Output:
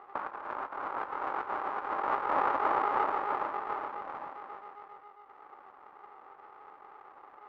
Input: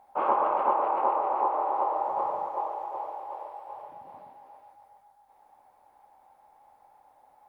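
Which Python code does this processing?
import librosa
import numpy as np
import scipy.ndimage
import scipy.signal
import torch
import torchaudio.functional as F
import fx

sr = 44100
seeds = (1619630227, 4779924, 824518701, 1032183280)

y = fx.cycle_switch(x, sr, every=2, mode='muted')
y = scipy.signal.sosfilt(scipy.signal.butter(2, 2300.0, 'lowpass', fs=sr, output='sos'), y)
y = fx.peak_eq(y, sr, hz=1300.0, db=13.0, octaves=2.1)
y = fx.over_compress(y, sr, threshold_db=-26.0, ratio=-0.5)
y = y * 10.0 ** (-5.0 / 20.0)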